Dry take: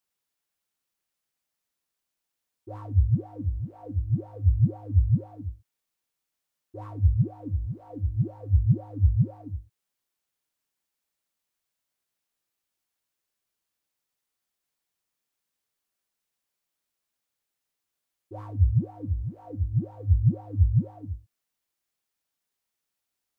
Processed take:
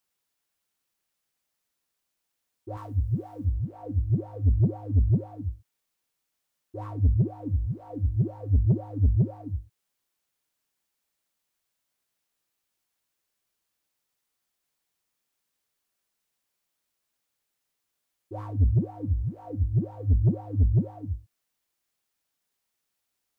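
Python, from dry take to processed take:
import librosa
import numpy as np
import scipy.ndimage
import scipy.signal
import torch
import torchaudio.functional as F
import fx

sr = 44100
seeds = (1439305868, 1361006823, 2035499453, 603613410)

y = fx.tilt_eq(x, sr, slope=2.0, at=(2.77, 3.45))
y = 10.0 ** (-18.0 / 20.0) * np.tanh(y / 10.0 ** (-18.0 / 20.0))
y = F.gain(torch.from_numpy(y), 3.0).numpy()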